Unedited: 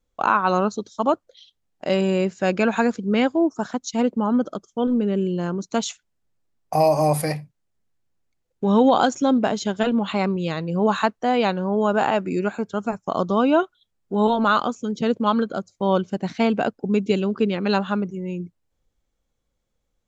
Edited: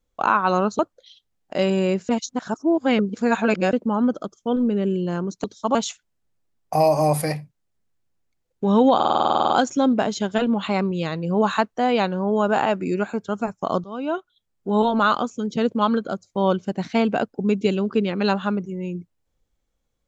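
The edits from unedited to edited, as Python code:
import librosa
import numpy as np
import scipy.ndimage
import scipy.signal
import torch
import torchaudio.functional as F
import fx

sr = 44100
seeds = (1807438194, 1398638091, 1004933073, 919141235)

y = fx.edit(x, sr, fx.move(start_s=0.79, length_s=0.31, to_s=5.75),
    fx.reverse_span(start_s=2.4, length_s=1.64),
    fx.stutter(start_s=8.95, slice_s=0.05, count=12),
    fx.fade_in_from(start_s=13.29, length_s=1.08, curve='qsin', floor_db=-21.5), tone=tone)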